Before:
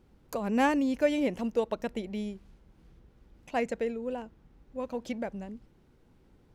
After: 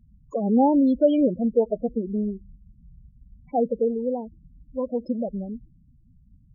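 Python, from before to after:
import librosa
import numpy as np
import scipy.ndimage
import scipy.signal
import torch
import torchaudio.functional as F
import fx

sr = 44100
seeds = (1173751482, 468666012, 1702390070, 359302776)

p1 = fx.cheby_harmonics(x, sr, harmonics=(6,), levels_db=(-41,), full_scale_db=-13.0)
p2 = np.clip(10.0 ** (22.0 / 20.0) * p1, -1.0, 1.0) / 10.0 ** (22.0 / 20.0)
p3 = p1 + F.gain(torch.from_numpy(p2), -4.0).numpy()
p4 = fx.env_phaser(p3, sr, low_hz=400.0, high_hz=1900.0, full_db=-30.0)
p5 = fx.spec_topn(p4, sr, count=8)
y = F.gain(torch.from_numpy(p5), 5.0).numpy()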